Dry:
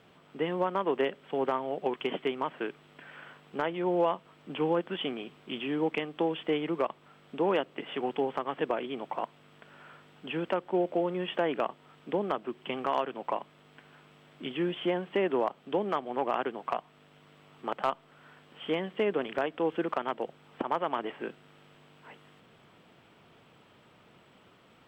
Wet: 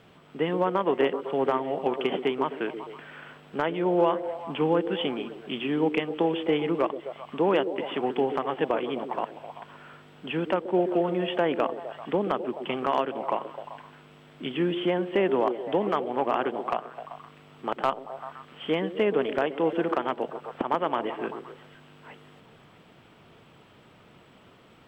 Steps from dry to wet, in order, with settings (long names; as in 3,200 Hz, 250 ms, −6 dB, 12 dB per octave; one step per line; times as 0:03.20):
low-shelf EQ 120 Hz +6 dB
echo through a band-pass that steps 129 ms, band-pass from 340 Hz, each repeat 0.7 octaves, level −6.5 dB
level +3.5 dB